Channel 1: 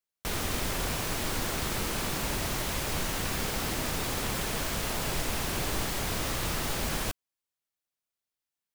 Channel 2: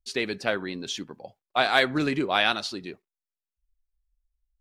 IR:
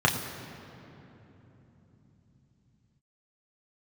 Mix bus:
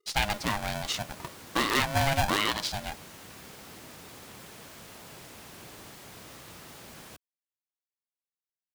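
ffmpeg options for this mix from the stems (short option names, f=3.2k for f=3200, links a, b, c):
-filter_complex "[0:a]highpass=98,adelay=50,volume=-15dB[a];[1:a]aeval=exprs='0.355*(abs(mod(val(0)/0.355+3,4)-2)-1)':c=same,aeval=exprs='val(0)*sgn(sin(2*PI*410*n/s))':c=same,volume=1dB[b];[a][b]amix=inputs=2:normalize=0,alimiter=limit=-14dB:level=0:latency=1:release=156"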